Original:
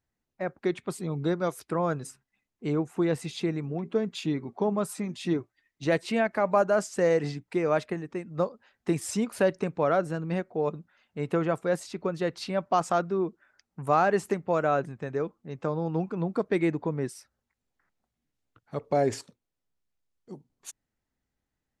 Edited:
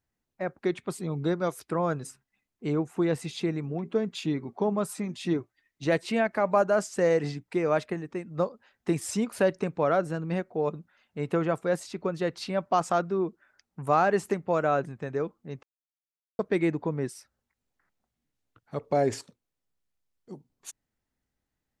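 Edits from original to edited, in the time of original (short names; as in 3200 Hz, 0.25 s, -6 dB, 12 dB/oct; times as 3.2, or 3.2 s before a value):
15.63–16.39 mute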